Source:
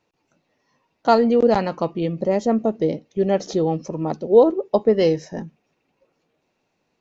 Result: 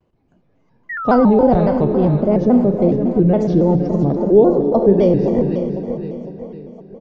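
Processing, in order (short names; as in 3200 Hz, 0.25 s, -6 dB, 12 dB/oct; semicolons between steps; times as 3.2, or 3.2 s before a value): tilt -4.5 dB/oct; on a send: feedback echo 0.511 s, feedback 45%, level -11 dB; on the sum: Schroeder reverb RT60 3 s, combs from 28 ms, DRR 6.5 dB; in parallel at +1 dB: limiter -8.5 dBFS, peak gain reduction 11 dB; on the sum: painted sound fall, 0.89–2.07, 300–1800 Hz -19 dBFS; shaped vibrato square 3.6 Hz, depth 160 cents; gain -6.5 dB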